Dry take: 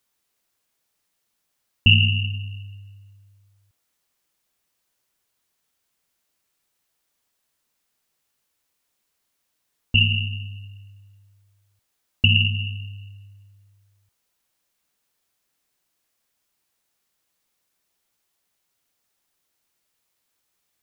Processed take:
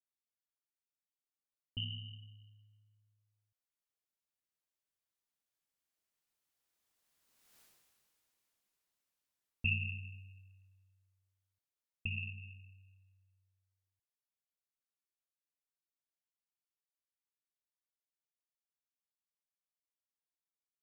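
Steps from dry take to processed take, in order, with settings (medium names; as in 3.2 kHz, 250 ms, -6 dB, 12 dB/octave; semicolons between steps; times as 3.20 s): Doppler pass-by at 7.60 s, 17 m/s, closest 1.8 m; trim +9.5 dB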